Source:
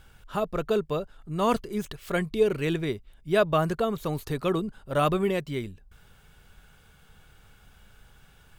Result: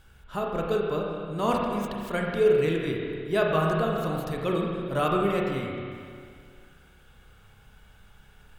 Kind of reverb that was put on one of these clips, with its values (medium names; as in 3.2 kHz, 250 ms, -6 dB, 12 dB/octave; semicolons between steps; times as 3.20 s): spring tank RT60 2.2 s, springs 30/44 ms, chirp 40 ms, DRR -1.5 dB; trim -3 dB